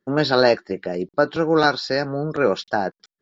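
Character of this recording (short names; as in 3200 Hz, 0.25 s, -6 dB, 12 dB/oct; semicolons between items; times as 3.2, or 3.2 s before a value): noise floor -94 dBFS; spectral tilt -3.5 dB/oct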